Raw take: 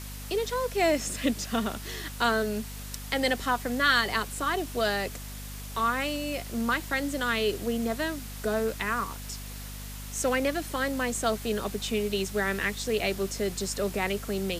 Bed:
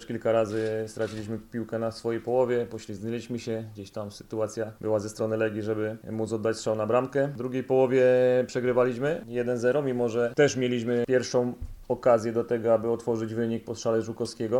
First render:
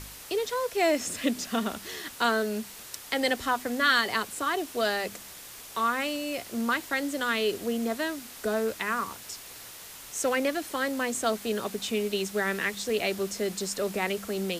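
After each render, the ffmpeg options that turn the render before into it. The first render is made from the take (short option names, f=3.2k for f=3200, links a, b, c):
-af "bandreject=f=50:t=h:w=4,bandreject=f=100:t=h:w=4,bandreject=f=150:t=h:w=4,bandreject=f=200:t=h:w=4,bandreject=f=250:t=h:w=4"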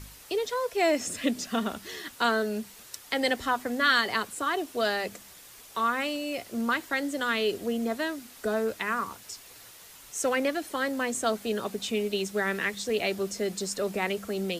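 -af "afftdn=nr=6:nf=-45"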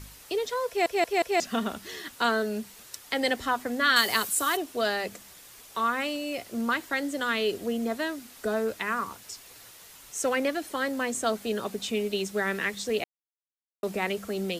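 -filter_complex "[0:a]asettb=1/sr,asplit=3[a][b][c];[a]atrim=end=3.964[d];[b]atrim=start=3.96:end=4.57,asetpts=PTS-STARTPTS,afade=t=in:d=0.004:c=qsin,afade=t=out:st=0.606:d=0.004:c=qsin,aemphasis=mode=production:type=75kf[e];[c]atrim=start=4.566[f];[d][e]acrossfade=d=0.004:c1=hsin:c2=qsin[g];[g][f]acrossfade=d=0.004:c1=qsin:c2=hsin,asplit=7[h][i][j][k][l][m][n];[h]atrim=end=0.862[o];[i]atrim=start=0.678:end=0.862[p];[j]atrim=start=0.678:end=0.862[q];[k]atrim=start=0.678:end=0.862[r];[l]atrim=start=1.398:end=13.04,asetpts=PTS-STARTPTS,afade=t=out:st=11.638:d=0.004:c=hsin[s];[m]atrim=start=13.04:end=13.83,asetpts=PTS-STARTPTS,volume=0[t];[n]atrim=start=13.83,asetpts=PTS-STARTPTS,afade=t=in:d=0.004:c=hsin[u];[o][p]acrossfade=d=0.004:c1=hsin:c2=hsin[v];[v][q]acrossfade=d=0.004:c1=hsin:c2=hsin[w];[w][r]acrossfade=d=0.004:c1=hsin:c2=hsin[x];[s][t][u]concat=n=3:v=0:a=1[y];[x][y]acrossfade=d=0.004:c1=hsin:c2=hsin"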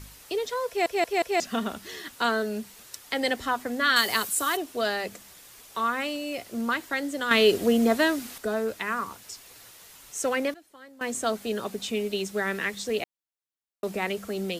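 -filter_complex "[0:a]asplit=5[a][b][c][d][e];[a]atrim=end=7.312[f];[b]atrim=start=7.308:end=8.382,asetpts=PTS-STARTPTS,volume=8dB[g];[c]atrim=start=8.378:end=10.54,asetpts=PTS-STARTPTS,afade=t=out:st=1.982:d=0.18:c=log:silence=0.105925[h];[d]atrim=start=10.54:end=11.01,asetpts=PTS-STARTPTS,volume=-19.5dB[i];[e]atrim=start=11.01,asetpts=PTS-STARTPTS,afade=t=in:d=0.18:c=log:silence=0.105925[j];[f][g]acrossfade=d=0.004:c1=hsin:c2=hsin[k];[h][i][j]concat=n=3:v=0:a=1[l];[k][l]acrossfade=d=0.004:c1=hsin:c2=hsin"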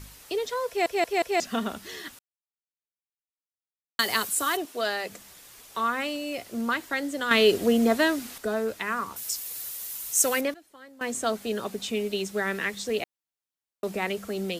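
-filter_complex "[0:a]asettb=1/sr,asplit=3[a][b][c];[a]atrim=end=4.654[d];[b]atrim=start=4.65:end=5.1,asetpts=PTS-STARTPTS,afade=t=in:d=0.004:c=qsin,afade=t=out:st=0.446:d=0.004:c=qsin,highpass=f=360:p=1[e];[c]atrim=start=5.096[f];[d][e]acrossfade=d=0.004:c1=hsin:c2=qsin[g];[g][f]acrossfade=d=0.004:c1=qsin:c2=hsin,asettb=1/sr,asplit=3[h][i][j];[h]atrim=end=9.164[k];[i]atrim=start=9.16:end=10.41,asetpts=PTS-STARTPTS,afade=t=in:d=0.004:c=qsin,afade=t=out:st=1.246:d=0.004:c=qsin,aemphasis=mode=production:type=75fm[l];[j]atrim=start=10.406[m];[k][l]acrossfade=d=0.004:c1=hsin:c2=qsin[n];[n][m]acrossfade=d=0.004:c1=qsin:c2=hsin,asplit=3[o][p][q];[o]atrim=end=2.19,asetpts=PTS-STARTPTS,afade=t=out:st=2.186:d=0.004:c=hsin[r];[p]atrim=start=2.19:end=3.99,asetpts=PTS-STARTPTS,volume=0[s];[q]atrim=start=3.99,asetpts=PTS-STARTPTS,afade=t=in:d=0.004:c=hsin[t];[r][s][t]concat=n=3:v=0:a=1"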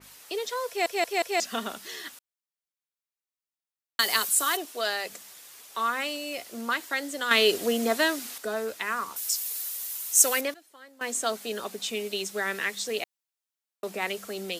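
-af "highpass=f=480:p=1,adynamicequalizer=threshold=0.0112:dfrequency=3200:dqfactor=0.7:tfrequency=3200:tqfactor=0.7:attack=5:release=100:ratio=0.375:range=2:mode=boostabove:tftype=highshelf"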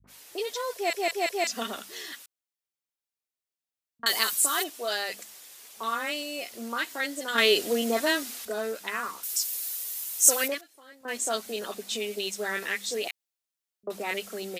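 -filter_complex "[0:a]acrossover=split=150|1200[a][b][c];[b]adelay=40[d];[c]adelay=70[e];[a][d][e]amix=inputs=3:normalize=0"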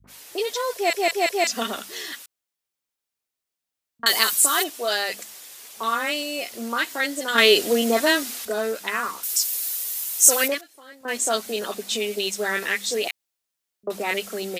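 -af "volume=6dB,alimiter=limit=-1dB:level=0:latency=1"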